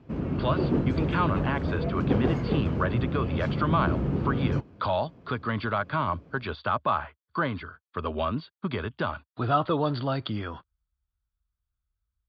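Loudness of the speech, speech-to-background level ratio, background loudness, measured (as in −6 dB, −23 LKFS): −30.0 LKFS, −1.5 dB, −28.5 LKFS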